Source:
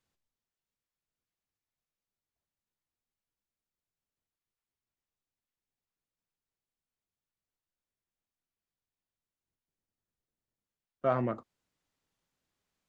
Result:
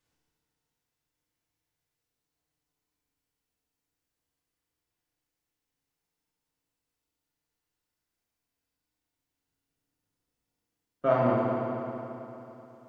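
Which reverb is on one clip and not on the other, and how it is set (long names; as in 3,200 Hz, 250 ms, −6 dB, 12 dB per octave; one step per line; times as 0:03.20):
feedback delay network reverb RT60 3.2 s, high-frequency decay 0.85×, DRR −4.5 dB
level +1.5 dB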